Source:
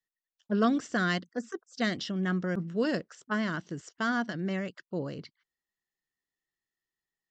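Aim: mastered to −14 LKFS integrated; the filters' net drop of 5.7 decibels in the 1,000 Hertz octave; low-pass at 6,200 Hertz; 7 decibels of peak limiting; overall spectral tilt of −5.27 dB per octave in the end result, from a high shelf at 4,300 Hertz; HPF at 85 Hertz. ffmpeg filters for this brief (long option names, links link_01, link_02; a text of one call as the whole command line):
ffmpeg -i in.wav -af "highpass=85,lowpass=6200,equalizer=frequency=1000:width_type=o:gain=-8.5,highshelf=frequency=4300:gain=-4,volume=20.5dB,alimiter=limit=-3.5dB:level=0:latency=1" out.wav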